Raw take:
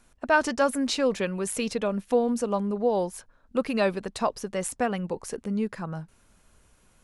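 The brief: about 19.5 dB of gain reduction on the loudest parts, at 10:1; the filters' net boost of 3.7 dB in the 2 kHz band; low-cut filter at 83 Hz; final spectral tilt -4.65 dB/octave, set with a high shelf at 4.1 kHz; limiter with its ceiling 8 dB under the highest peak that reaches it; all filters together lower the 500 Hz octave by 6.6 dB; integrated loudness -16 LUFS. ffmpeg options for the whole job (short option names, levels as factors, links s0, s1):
-af "highpass=83,equalizer=f=500:t=o:g=-8,equalizer=f=2000:t=o:g=7.5,highshelf=f=4100:g=-6.5,acompressor=threshold=0.0178:ratio=10,volume=17.8,alimiter=limit=0.531:level=0:latency=1"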